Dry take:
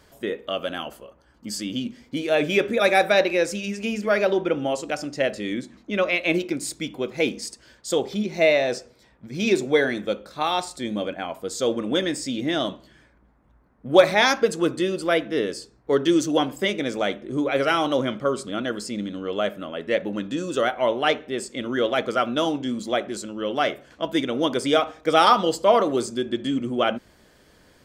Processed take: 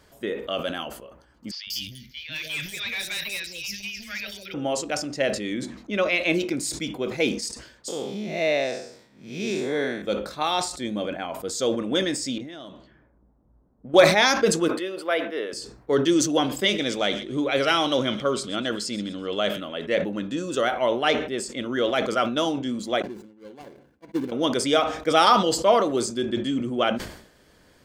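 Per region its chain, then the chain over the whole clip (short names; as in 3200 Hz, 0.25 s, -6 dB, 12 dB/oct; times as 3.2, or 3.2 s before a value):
1.51–4.54 EQ curve 110 Hz 0 dB, 270 Hz -22 dB, 980 Hz -24 dB, 1900 Hz -2 dB, 5300 Hz +7 dB, 8400 Hz -17 dB, 13000 Hz +11 dB + hard clip -25 dBFS + three bands offset in time mids, lows, highs 0.16/0.19 s, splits 650/4400 Hz
7.88–10.02 time blur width 0.188 s + HPF 120 Hz
12.38–13.94 low-pass opened by the level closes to 590 Hz, open at -24.5 dBFS + compressor 12:1, threshold -34 dBFS
14.68–15.53 HPF 480 Hz + bell 6800 Hz -14 dB 1.2 oct
16.45–19.86 bell 3700 Hz +6 dB 0.96 oct + thin delay 0.127 s, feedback 46%, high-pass 2300 Hz, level -16.5 dB
23.02–24.32 median filter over 41 samples + notch comb 630 Hz + upward expander 2.5:1, over -39 dBFS
whole clip: dynamic EQ 5800 Hz, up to +4 dB, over -39 dBFS, Q 0.84; sustainer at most 86 dB/s; gain -1.5 dB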